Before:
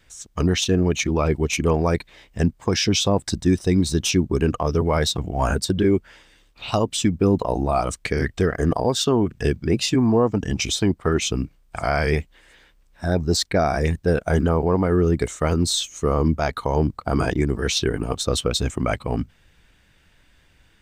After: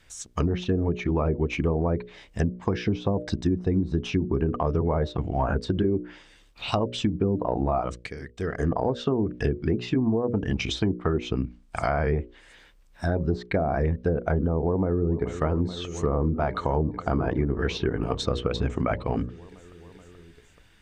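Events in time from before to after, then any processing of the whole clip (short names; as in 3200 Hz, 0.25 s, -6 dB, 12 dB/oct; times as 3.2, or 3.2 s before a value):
7.71–8.78 dip -16 dB, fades 0.45 s
14.64–15.42 echo throw 0.43 s, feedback 85%, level -15.5 dB
whole clip: notches 60/120/180/240/300/360/420/480/540/600 Hz; treble ducked by the level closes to 670 Hz, closed at -15 dBFS; compressor, threshold -20 dBFS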